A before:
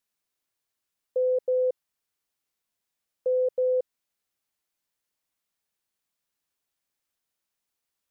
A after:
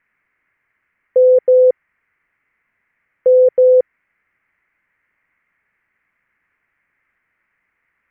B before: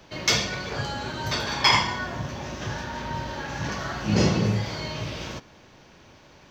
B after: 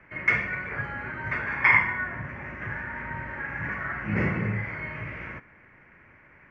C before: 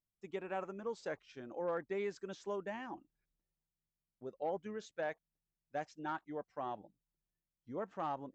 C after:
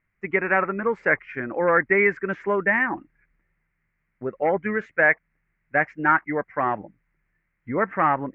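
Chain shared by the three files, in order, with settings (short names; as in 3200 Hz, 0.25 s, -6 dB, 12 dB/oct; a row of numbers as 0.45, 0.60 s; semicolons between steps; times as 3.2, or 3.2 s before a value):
EQ curve 120 Hz 0 dB, 790 Hz -4 dB, 2100 Hz +13 dB, 3700 Hz -28 dB; normalise peaks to -6 dBFS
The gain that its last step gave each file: +17.5, -4.5, +19.0 dB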